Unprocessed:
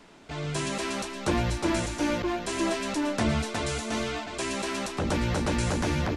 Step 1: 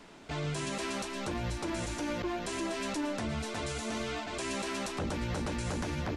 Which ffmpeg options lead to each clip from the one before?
ffmpeg -i in.wav -af "alimiter=level_in=2.5dB:limit=-24dB:level=0:latency=1:release=151,volume=-2.5dB" out.wav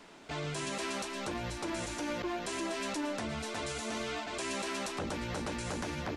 ffmpeg -i in.wav -af "lowshelf=frequency=180:gain=-8" out.wav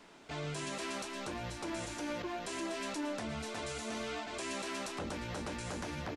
ffmpeg -i in.wav -filter_complex "[0:a]asplit=2[link_01][link_02];[link_02]adelay=27,volume=-12dB[link_03];[link_01][link_03]amix=inputs=2:normalize=0,volume=-3.5dB" out.wav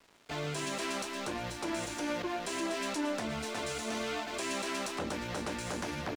ffmpeg -i in.wav -filter_complex "[0:a]acrossover=split=150[link_01][link_02];[link_02]acontrast=30[link_03];[link_01][link_03]amix=inputs=2:normalize=0,aeval=exprs='sgn(val(0))*max(abs(val(0))-0.00299,0)':channel_layout=same" out.wav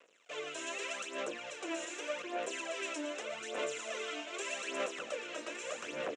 ffmpeg -i in.wav -af "aphaser=in_gain=1:out_gain=1:delay=3.2:decay=0.66:speed=0.83:type=sinusoidal,highpass=440,equalizer=frequency=500:width_type=q:width=4:gain=10,equalizer=frequency=870:width_type=q:width=4:gain=-8,equalizer=frequency=2700:width_type=q:width=4:gain=7,equalizer=frequency=4600:width_type=q:width=4:gain=-10,equalizer=frequency=7200:width_type=q:width=4:gain=6,lowpass=frequency=7800:width=0.5412,lowpass=frequency=7800:width=1.3066,aecho=1:1:1164:0.211,volume=-6.5dB" out.wav

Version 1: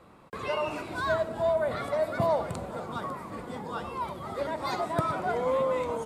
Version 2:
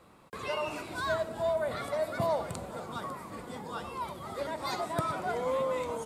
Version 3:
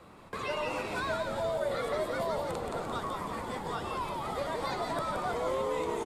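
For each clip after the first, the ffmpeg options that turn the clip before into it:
ffmpeg -i in.wav -af "highshelf=frequency=3500:gain=8,volume=-4dB" out.wav
ffmpeg -i in.wav -filter_complex "[0:a]acrossover=split=450|3800[link_01][link_02][link_03];[link_01]acompressor=threshold=-48dB:ratio=4[link_04];[link_02]acompressor=threshold=-39dB:ratio=4[link_05];[link_03]acompressor=threshold=-53dB:ratio=4[link_06];[link_04][link_05][link_06]amix=inputs=3:normalize=0,highshelf=frequency=7600:gain=-7,asplit=9[link_07][link_08][link_09][link_10][link_11][link_12][link_13][link_14][link_15];[link_08]adelay=172,afreqshift=-94,volume=-4dB[link_16];[link_09]adelay=344,afreqshift=-188,volume=-9dB[link_17];[link_10]adelay=516,afreqshift=-282,volume=-14.1dB[link_18];[link_11]adelay=688,afreqshift=-376,volume=-19.1dB[link_19];[link_12]adelay=860,afreqshift=-470,volume=-24.1dB[link_20];[link_13]adelay=1032,afreqshift=-564,volume=-29.2dB[link_21];[link_14]adelay=1204,afreqshift=-658,volume=-34.2dB[link_22];[link_15]adelay=1376,afreqshift=-752,volume=-39.3dB[link_23];[link_07][link_16][link_17][link_18][link_19][link_20][link_21][link_22][link_23]amix=inputs=9:normalize=0,volume=5dB" out.wav

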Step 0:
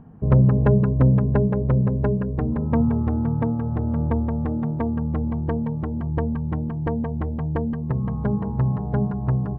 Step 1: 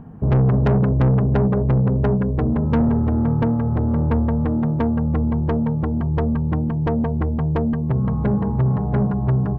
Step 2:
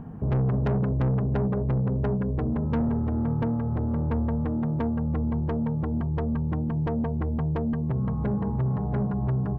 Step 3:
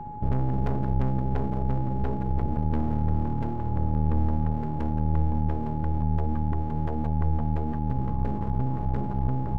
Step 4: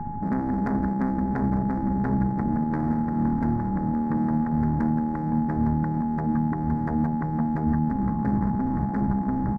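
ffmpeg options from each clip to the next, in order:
ffmpeg -i in.wav -af "asoftclip=type=tanh:threshold=-19.5dB,volume=6.5dB" out.wav
ffmpeg -i in.wav -af "alimiter=limit=-21dB:level=0:latency=1:release=476" out.wav
ffmpeg -i in.wav -af "equalizer=frequency=71:width=0.92:gain=13,aeval=exprs='max(val(0),0)':channel_layout=same,aeval=exprs='val(0)+0.0224*sin(2*PI*840*n/s)':channel_layout=same,volume=-3.5dB" out.wav
ffmpeg -i in.wav -af "afftfilt=real='re*lt(hypot(re,im),0.316)':imag='im*lt(hypot(re,im),0.316)':win_size=1024:overlap=0.75,firequalizer=gain_entry='entry(140,0);entry(210,5);entry(450,-9);entry(670,-4);entry(1800,4);entry(2900,-23);entry(4700,-6)':delay=0.05:min_phase=1,volume=6.5dB" out.wav

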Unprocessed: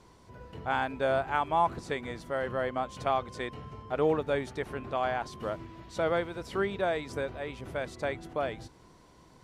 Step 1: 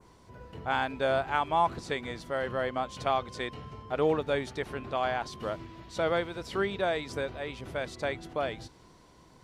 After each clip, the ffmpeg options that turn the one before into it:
ffmpeg -i in.wav -af "adynamicequalizer=threshold=0.00282:dfrequency=4100:dqfactor=0.87:tfrequency=4100:tqfactor=0.87:attack=5:release=100:ratio=0.375:range=2.5:mode=boostabove:tftype=bell" out.wav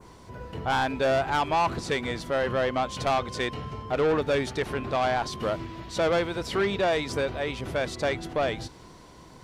ffmpeg -i in.wav -af "asoftclip=type=tanh:threshold=-27dB,volume=8dB" out.wav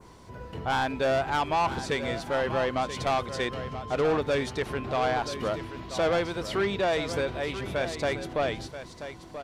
ffmpeg -i in.wav -af "aecho=1:1:983:0.282,volume=-1.5dB" out.wav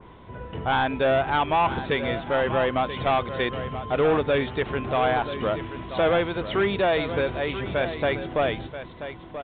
ffmpeg -i in.wav -af "aresample=8000,aresample=44100,volume=4dB" out.wav

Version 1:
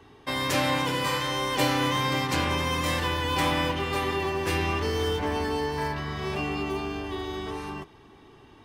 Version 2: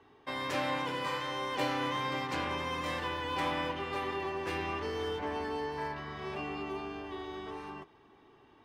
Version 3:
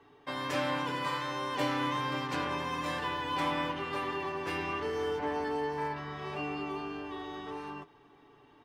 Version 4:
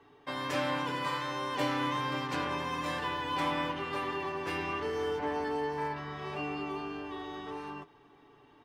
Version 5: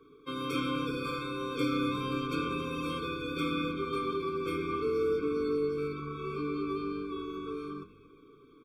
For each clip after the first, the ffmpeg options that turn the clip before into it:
ffmpeg -i in.wav -af "lowpass=frequency=2200:poles=1,lowshelf=frequency=210:gain=-11,volume=-5dB" out.wav
ffmpeg -i in.wav -af "aecho=1:1:6.9:0.47" out.wav
ffmpeg -i in.wav -af anull out.wav
ffmpeg -i in.wav -filter_complex "[0:a]equalizer=frequency=100:width_type=o:width=0.67:gain=-9,equalizer=frequency=1600:width_type=o:width=0.67:gain=-6,equalizer=frequency=6300:width_type=o:width=0.67:gain=-9,asplit=5[link_01][link_02][link_03][link_04][link_05];[link_02]adelay=127,afreqshift=-100,volume=-19.5dB[link_06];[link_03]adelay=254,afreqshift=-200,volume=-24.7dB[link_07];[link_04]adelay=381,afreqshift=-300,volume=-29.9dB[link_08];[link_05]adelay=508,afreqshift=-400,volume=-35.1dB[link_09];[link_01][link_06][link_07][link_08][link_09]amix=inputs=5:normalize=0,afftfilt=real='re*eq(mod(floor(b*sr/1024/530),2),0)':imag='im*eq(mod(floor(b*sr/1024/530),2),0)':win_size=1024:overlap=0.75,volume=5dB" out.wav

